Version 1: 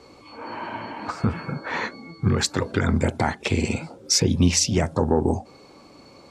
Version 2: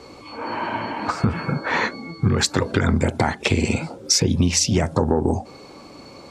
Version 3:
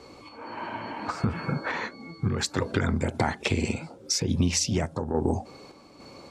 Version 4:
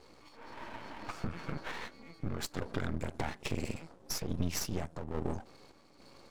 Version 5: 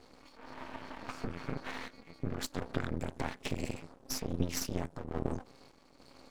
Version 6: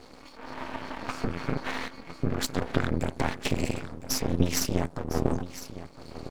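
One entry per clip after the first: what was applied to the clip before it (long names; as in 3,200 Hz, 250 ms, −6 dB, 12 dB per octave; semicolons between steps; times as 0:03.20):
downward compressor 6 to 1, threshold −21 dBFS, peak gain reduction 8.5 dB; level +6.5 dB
sample-and-hold tremolo; level −4.5 dB
half-wave rectification; level −6.5 dB
amplitude modulation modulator 260 Hz, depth 85%; level +3.5 dB
single-tap delay 1,007 ms −14 dB; level +8.5 dB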